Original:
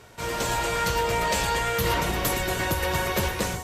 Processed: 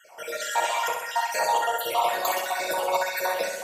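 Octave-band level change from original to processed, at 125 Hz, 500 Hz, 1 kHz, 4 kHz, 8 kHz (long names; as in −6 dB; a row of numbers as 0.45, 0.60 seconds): below −25 dB, 0.0 dB, +2.5 dB, −2.5 dB, −2.5 dB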